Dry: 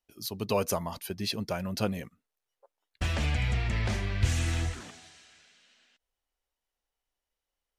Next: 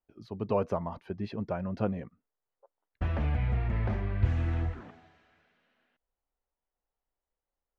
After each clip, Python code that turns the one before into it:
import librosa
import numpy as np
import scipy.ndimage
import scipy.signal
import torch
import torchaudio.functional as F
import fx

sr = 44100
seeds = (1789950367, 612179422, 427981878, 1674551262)

y = scipy.signal.sosfilt(scipy.signal.butter(2, 1300.0, 'lowpass', fs=sr, output='sos'), x)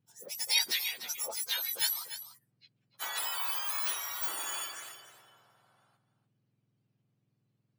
y = fx.octave_mirror(x, sr, pivot_hz=1500.0)
y = y + 10.0 ** (-12.0 / 20.0) * np.pad(y, (int(294 * sr / 1000.0), 0))[:len(y)]
y = y * librosa.db_to_amplitude(6.5)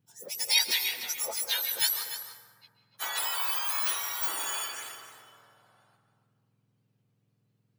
y = fx.rev_plate(x, sr, seeds[0], rt60_s=1.7, hf_ratio=0.4, predelay_ms=120, drr_db=8.5)
y = y * librosa.db_to_amplitude(3.5)